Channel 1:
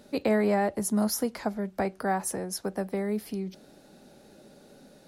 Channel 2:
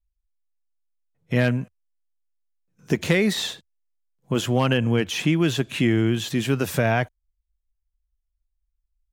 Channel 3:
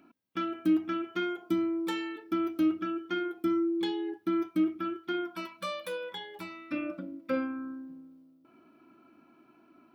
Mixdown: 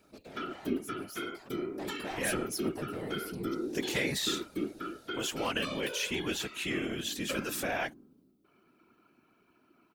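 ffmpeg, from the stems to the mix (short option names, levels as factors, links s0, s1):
-filter_complex "[0:a]equalizer=f=220:w=1.5:g=-7,asoftclip=type=tanh:threshold=0.0224,lowshelf=f=490:g=10.5,volume=0.75,afade=t=in:st=1.67:d=0.29:silence=0.266073[s0];[1:a]highpass=250,adelay=850,volume=0.473[s1];[2:a]volume=0.794[s2];[s0][s1][s2]amix=inputs=3:normalize=0,highshelf=f=2100:g=10,afftfilt=real='hypot(re,im)*cos(2*PI*random(0))':imag='hypot(re,im)*sin(2*PI*random(1))':win_size=512:overlap=0.75"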